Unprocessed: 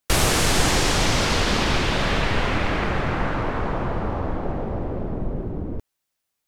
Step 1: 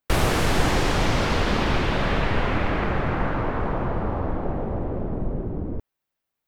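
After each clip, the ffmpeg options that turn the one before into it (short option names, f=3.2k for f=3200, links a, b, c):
-af "equalizer=f=7.9k:t=o:w=2.3:g=-11"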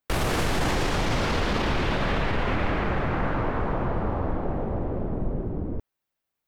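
-af "alimiter=limit=-15dB:level=0:latency=1:release=17,volume=-1dB"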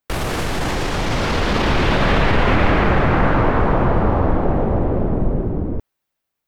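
-af "dynaudnorm=f=460:g=7:m=8dB,volume=2.5dB"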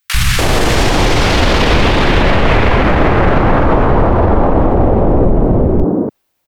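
-filter_complex "[0:a]acrossover=split=160|1400[a][b][c];[a]adelay=40[d];[b]adelay=290[e];[d][e][c]amix=inputs=3:normalize=0,alimiter=level_in=14.5dB:limit=-1dB:release=50:level=0:latency=1,volume=-1dB"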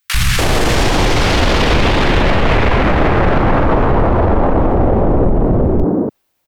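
-af "asoftclip=type=tanh:threshold=-4.5dB"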